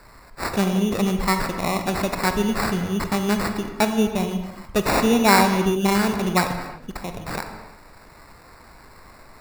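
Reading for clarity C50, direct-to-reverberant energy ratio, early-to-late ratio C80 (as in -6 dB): 7.0 dB, 6.0 dB, 8.5 dB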